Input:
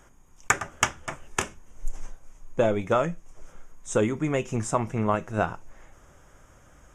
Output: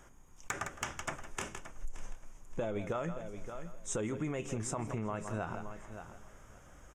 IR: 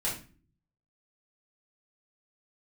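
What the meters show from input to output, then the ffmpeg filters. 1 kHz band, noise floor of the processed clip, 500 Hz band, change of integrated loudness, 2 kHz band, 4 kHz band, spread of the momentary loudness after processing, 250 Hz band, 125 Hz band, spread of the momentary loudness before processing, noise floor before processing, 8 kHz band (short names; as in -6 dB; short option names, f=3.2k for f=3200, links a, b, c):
-12.5 dB, -57 dBFS, -12.0 dB, -12.5 dB, -12.5 dB, -11.5 dB, 17 LU, -10.0 dB, -9.0 dB, 18 LU, -56 dBFS, -9.5 dB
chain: -filter_complex "[0:a]asoftclip=type=hard:threshold=-8dB,asplit=2[a][b];[b]aecho=0:1:162:0.126[c];[a][c]amix=inputs=2:normalize=0,alimiter=limit=-19dB:level=0:latency=1:release=76,asplit=2[d][e];[e]aecho=0:1:573|1146:0.188|0.0301[f];[d][f]amix=inputs=2:normalize=0,acompressor=threshold=-30dB:ratio=5,volume=-2.5dB"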